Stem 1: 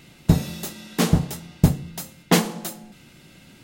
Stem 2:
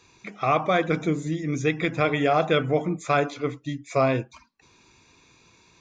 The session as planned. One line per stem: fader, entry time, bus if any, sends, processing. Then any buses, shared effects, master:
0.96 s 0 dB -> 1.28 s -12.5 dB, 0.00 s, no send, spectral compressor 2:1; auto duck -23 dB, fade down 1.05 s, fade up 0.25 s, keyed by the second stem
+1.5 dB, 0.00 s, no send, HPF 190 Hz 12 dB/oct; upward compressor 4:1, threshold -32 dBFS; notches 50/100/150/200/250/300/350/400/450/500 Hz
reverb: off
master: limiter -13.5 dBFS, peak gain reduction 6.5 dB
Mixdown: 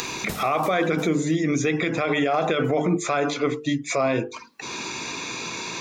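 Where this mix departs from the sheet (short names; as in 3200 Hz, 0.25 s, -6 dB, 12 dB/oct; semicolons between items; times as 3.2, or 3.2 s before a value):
stem 1 0.0 dB -> -6.0 dB; stem 2 +1.5 dB -> +10.0 dB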